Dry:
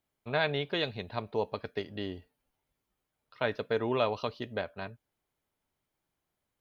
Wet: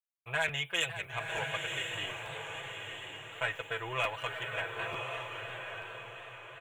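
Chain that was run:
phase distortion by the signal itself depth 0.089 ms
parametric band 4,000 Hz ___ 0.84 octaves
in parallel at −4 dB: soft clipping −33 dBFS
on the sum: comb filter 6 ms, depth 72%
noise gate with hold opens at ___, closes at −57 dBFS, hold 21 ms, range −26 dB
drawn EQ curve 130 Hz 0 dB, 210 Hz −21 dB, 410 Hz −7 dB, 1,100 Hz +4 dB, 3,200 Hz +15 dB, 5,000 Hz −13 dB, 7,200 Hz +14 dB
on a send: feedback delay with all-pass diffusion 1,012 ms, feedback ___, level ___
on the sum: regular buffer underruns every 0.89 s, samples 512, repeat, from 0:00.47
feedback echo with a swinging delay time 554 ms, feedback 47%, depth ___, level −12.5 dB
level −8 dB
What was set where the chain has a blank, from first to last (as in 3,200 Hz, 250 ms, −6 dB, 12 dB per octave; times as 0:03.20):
−10 dB, −49 dBFS, 41%, −4 dB, 157 cents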